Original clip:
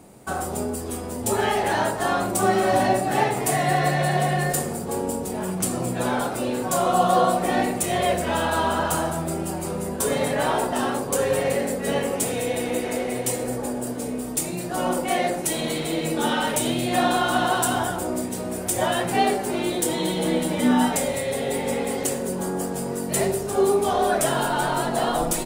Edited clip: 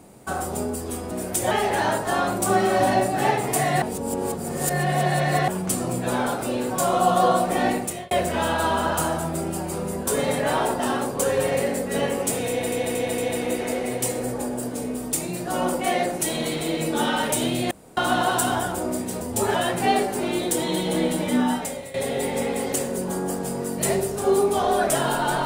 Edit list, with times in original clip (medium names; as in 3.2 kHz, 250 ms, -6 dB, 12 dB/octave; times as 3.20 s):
1.11–1.44 s: swap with 18.45–18.85 s
3.75–5.41 s: reverse
7.68–8.04 s: fade out
12.42 s: stutter 0.23 s, 4 plays
16.95–17.21 s: room tone
20.48–21.25 s: fade out linear, to -13.5 dB